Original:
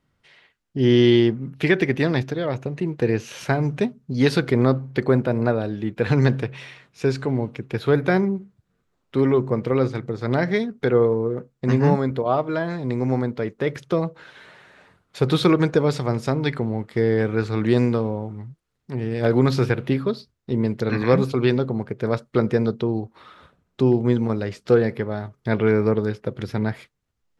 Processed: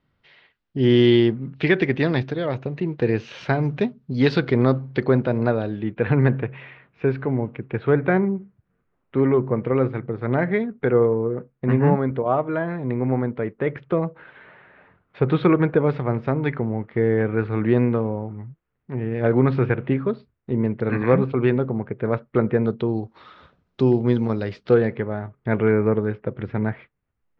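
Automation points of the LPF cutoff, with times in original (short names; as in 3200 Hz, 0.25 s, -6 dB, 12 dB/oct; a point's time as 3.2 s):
LPF 24 dB/oct
5.55 s 4400 Hz
6.14 s 2500 Hz
22.59 s 2500 Hz
23.03 s 5300 Hz
24.37 s 5300 Hz
25.16 s 2500 Hz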